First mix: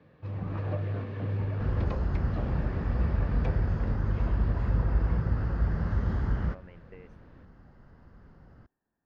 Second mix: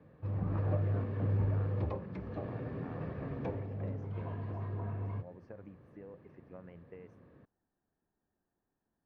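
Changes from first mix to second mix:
first sound: add air absorption 97 m; second sound: muted; master: add bell 3200 Hz -7.5 dB 2.1 oct

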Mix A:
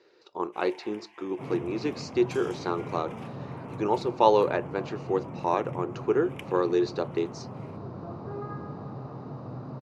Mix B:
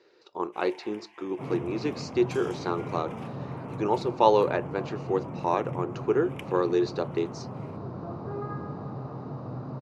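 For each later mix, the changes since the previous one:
second sound: send +11.5 dB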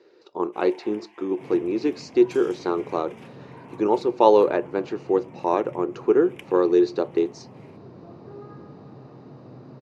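second sound -12.0 dB; master: add bell 320 Hz +7 dB 2.3 oct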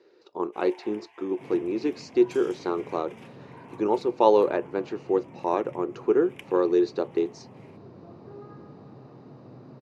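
reverb: off

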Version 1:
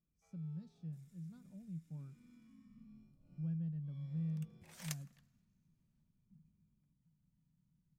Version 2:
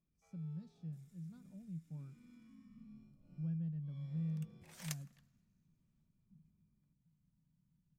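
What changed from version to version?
first sound: send on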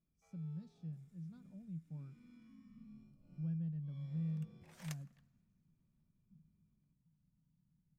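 second sound: add high shelf 2800 Hz -9 dB

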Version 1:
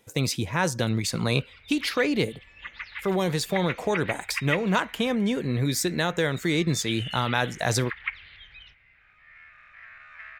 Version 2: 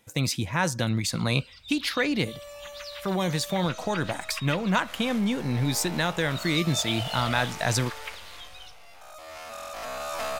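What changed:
first sound: remove synth low-pass 2100 Hz, resonance Q 4.5; second sound: remove Butterworth band-pass 1900 Hz, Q 3; master: add bell 420 Hz -8 dB 0.44 oct

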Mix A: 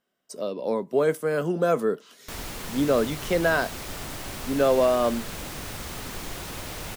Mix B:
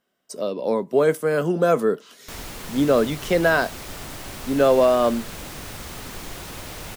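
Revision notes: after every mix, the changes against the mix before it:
speech +4.0 dB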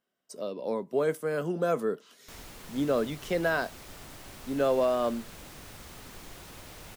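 speech -9.0 dB; background -11.0 dB

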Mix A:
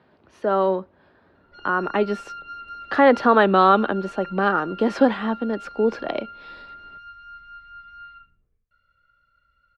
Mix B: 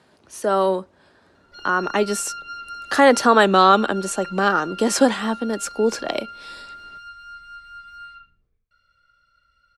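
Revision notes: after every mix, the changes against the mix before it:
master: remove air absorption 340 m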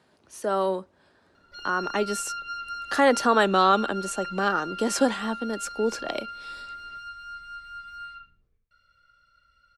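speech -6.0 dB

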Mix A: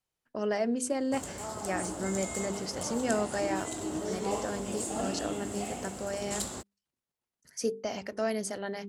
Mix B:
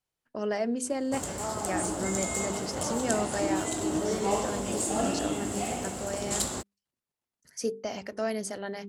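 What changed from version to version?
background +5.5 dB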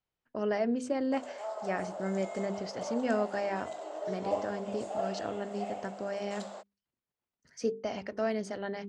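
background: add ladder high-pass 550 Hz, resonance 65%; master: add air absorption 140 m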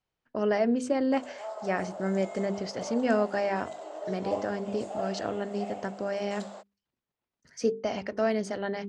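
speech +4.5 dB

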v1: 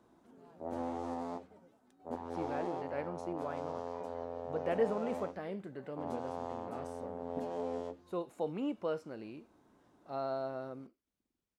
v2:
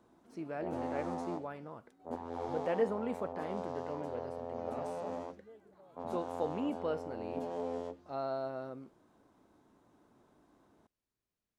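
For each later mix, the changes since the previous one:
speech: entry -2.00 s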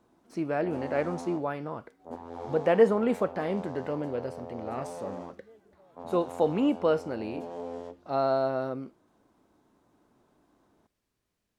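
speech +11.0 dB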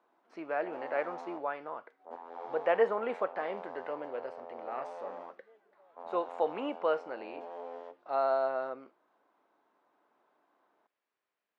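master: add BPF 630–2500 Hz

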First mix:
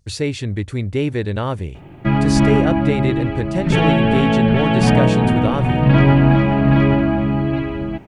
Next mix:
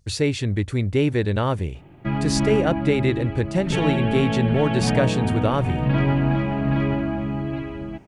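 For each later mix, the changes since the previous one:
background -8.0 dB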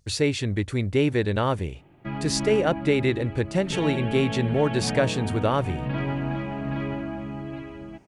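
background -5.5 dB; master: add low shelf 200 Hz -5 dB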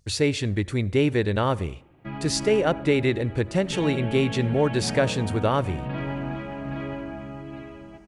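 background -6.5 dB; reverb: on, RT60 0.75 s

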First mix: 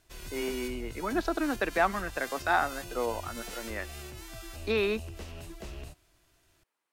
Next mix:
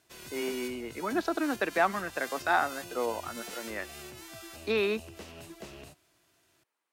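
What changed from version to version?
master: add HPF 140 Hz 12 dB/oct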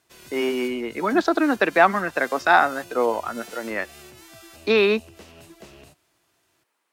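speech +10.0 dB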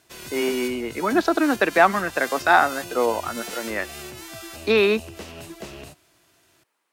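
background +8.0 dB

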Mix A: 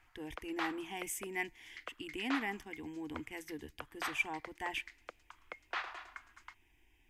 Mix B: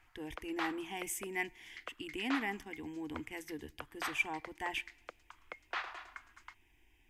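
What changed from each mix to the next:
speech: send +7.5 dB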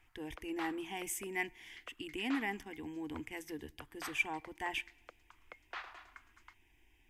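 background -6.0 dB

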